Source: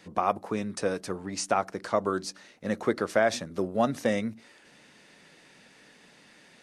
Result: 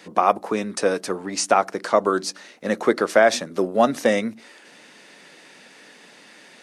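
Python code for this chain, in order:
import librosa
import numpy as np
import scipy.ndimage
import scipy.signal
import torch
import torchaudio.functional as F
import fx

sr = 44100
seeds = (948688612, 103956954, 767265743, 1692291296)

y = scipy.signal.sosfilt(scipy.signal.butter(2, 240.0, 'highpass', fs=sr, output='sos'), x)
y = y * 10.0 ** (8.5 / 20.0)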